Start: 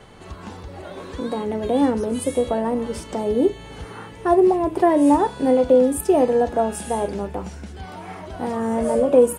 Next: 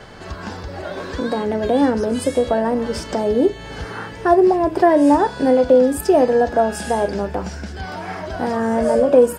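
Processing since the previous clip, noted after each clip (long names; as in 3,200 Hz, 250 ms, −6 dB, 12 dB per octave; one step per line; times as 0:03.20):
thirty-one-band graphic EQ 630 Hz +4 dB, 1,600 Hz +8 dB, 5,000 Hz +9 dB, 10,000 Hz −8 dB
in parallel at −2 dB: downward compressor, threshold −25 dBFS, peak gain reduction 15.5 dB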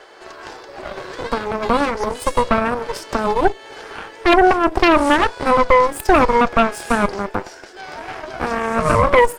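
Chebyshev high-pass filter 340 Hz, order 4
harmonic generator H 6 −6 dB, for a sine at −2.5 dBFS
level −2 dB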